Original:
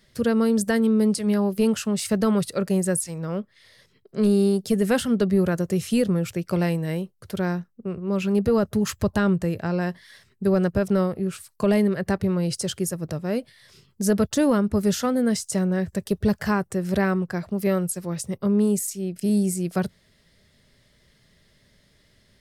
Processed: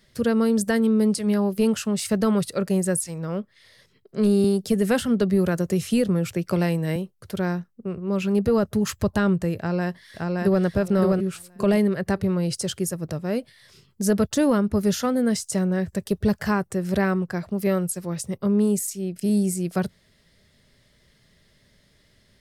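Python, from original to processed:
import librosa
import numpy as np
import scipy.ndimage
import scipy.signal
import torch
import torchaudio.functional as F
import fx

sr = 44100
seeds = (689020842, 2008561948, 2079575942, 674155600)

y = fx.band_squash(x, sr, depth_pct=40, at=(4.44, 6.96))
y = fx.echo_throw(y, sr, start_s=9.57, length_s=1.06, ms=570, feedback_pct=20, wet_db=-1.5)
y = fx.notch(y, sr, hz=7900.0, q=9.1, at=(14.4, 15.03))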